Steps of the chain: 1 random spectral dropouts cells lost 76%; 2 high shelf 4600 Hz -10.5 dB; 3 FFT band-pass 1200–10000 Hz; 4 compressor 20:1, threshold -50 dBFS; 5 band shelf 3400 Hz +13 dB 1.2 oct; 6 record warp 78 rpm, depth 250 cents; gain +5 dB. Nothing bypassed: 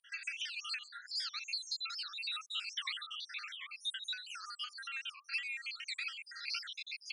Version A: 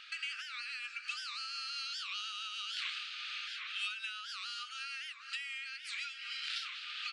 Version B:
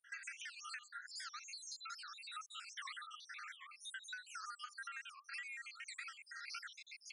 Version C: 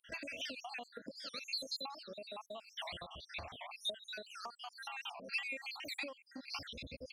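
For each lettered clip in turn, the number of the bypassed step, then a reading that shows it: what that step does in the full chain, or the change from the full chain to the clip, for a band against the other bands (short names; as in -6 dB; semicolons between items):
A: 1, 1 kHz band +3.0 dB; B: 5, 4 kHz band -11.5 dB; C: 3, 1 kHz band +7.5 dB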